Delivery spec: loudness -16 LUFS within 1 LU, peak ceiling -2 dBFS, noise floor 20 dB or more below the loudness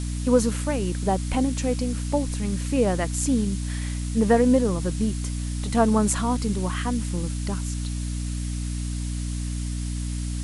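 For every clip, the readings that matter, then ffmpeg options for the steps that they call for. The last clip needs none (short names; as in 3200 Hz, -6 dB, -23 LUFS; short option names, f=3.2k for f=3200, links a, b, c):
hum 60 Hz; harmonics up to 300 Hz; hum level -26 dBFS; noise floor -29 dBFS; noise floor target -45 dBFS; loudness -25.0 LUFS; peak -6.0 dBFS; loudness target -16.0 LUFS
-> -af "bandreject=f=60:t=h:w=4,bandreject=f=120:t=h:w=4,bandreject=f=180:t=h:w=4,bandreject=f=240:t=h:w=4,bandreject=f=300:t=h:w=4"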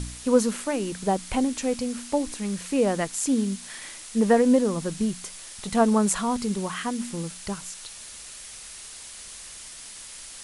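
hum none; noise floor -42 dBFS; noise floor target -46 dBFS
-> -af "afftdn=nr=6:nf=-42"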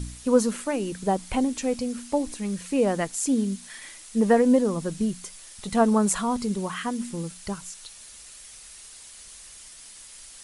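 noise floor -46 dBFS; loudness -25.5 LUFS; peak -7.5 dBFS; loudness target -16.0 LUFS
-> -af "volume=9.5dB,alimiter=limit=-2dB:level=0:latency=1"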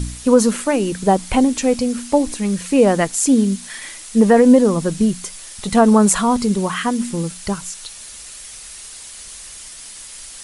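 loudness -16.5 LUFS; peak -2.0 dBFS; noise floor -37 dBFS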